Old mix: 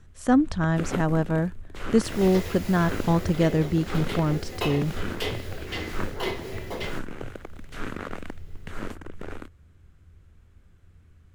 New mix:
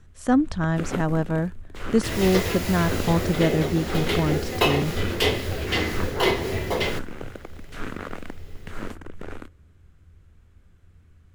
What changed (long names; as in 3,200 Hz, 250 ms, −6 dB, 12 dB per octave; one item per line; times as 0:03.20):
second sound +8.0 dB
reverb: on, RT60 1.1 s